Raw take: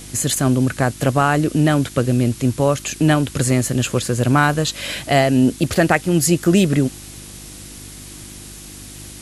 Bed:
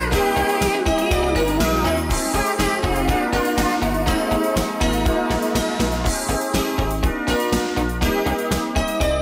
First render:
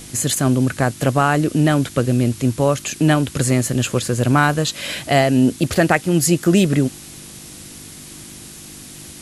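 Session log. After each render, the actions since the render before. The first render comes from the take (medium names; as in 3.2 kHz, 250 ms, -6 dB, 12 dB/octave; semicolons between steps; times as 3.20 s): de-hum 50 Hz, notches 2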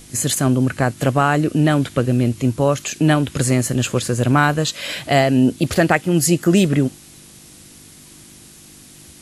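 noise print and reduce 6 dB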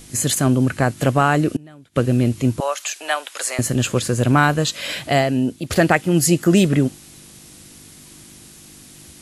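1.56–1.96 s: inverted gate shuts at -19 dBFS, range -27 dB; 2.60–3.59 s: high-pass 640 Hz 24 dB/octave; 4.96–5.70 s: fade out, to -11 dB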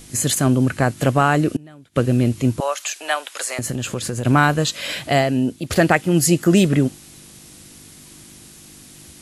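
3.34–4.25 s: compression, threshold -20 dBFS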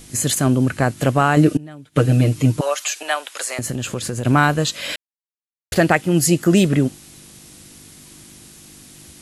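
1.36–3.03 s: comb 6.6 ms, depth 97%; 4.96–5.72 s: mute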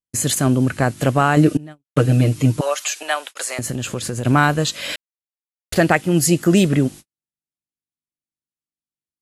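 gate -32 dBFS, range -57 dB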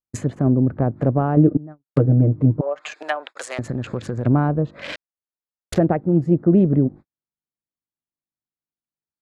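local Wiener filter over 15 samples; low-pass that closes with the level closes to 610 Hz, closed at -16 dBFS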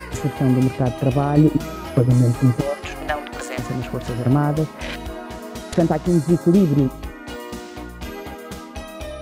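add bed -12.5 dB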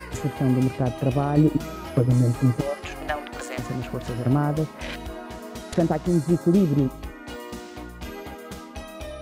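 trim -4 dB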